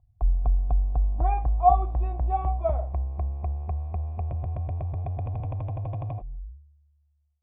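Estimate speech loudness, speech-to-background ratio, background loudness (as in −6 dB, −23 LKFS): −27.0 LKFS, 2.5 dB, −29.5 LKFS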